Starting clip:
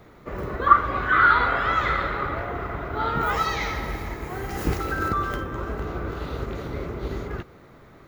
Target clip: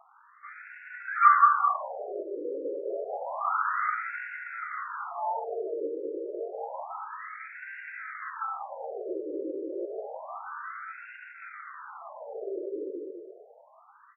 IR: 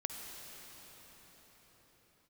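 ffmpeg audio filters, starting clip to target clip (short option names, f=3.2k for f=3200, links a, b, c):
-filter_complex "[0:a]aeval=exprs='0.841*(cos(1*acos(clip(val(0)/0.841,-1,1)))-cos(1*PI/2))+0.075*(cos(2*acos(clip(val(0)/0.841,-1,1)))-cos(2*PI/2))+0.0376*(cos(5*acos(clip(val(0)/0.841,-1,1)))-cos(5*PI/2))':c=same,atempo=0.57,asplit=2[a][b];[b]adelay=202,lowpass=f=1.9k:p=1,volume=-3dB,asplit=2[c][d];[d]adelay=202,lowpass=f=1.9k:p=1,volume=0.46,asplit=2[e][f];[f]adelay=202,lowpass=f=1.9k:p=1,volume=0.46,asplit=2[g][h];[h]adelay=202,lowpass=f=1.9k:p=1,volume=0.46,asplit=2[i][j];[j]adelay=202,lowpass=f=1.9k:p=1,volume=0.46,asplit=2[k][l];[l]adelay=202,lowpass=f=1.9k:p=1,volume=0.46[m];[c][e][g][i][k][m]amix=inputs=6:normalize=0[n];[a][n]amix=inputs=2:normalize=0,afftfilt=real='re*between(b*sr/1024,400*pow(2000/400,0.5+0.5*sin(2*PI*0.29*pts/sr))/1.41,400*pow(2000/400,0.5+0.5*sin(2*PI*0.29*pts/sr))*1.41)':imag='im*between(b*sr/1024,400*pow(2000/400,0.5+0.5*sin(2*PI*0.29*pts/sr))/1.41,400*pow(2000/400,0.5+0.5*sin(2*PI*0.29*pts/sr))*1.41)':win_size=1024:overlap=0.75,volume=-2dB"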